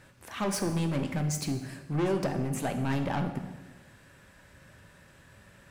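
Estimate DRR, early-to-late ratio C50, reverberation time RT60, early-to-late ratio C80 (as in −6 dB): 5.0 dB, 8.0 dB, 1.2 s, 10.0 dB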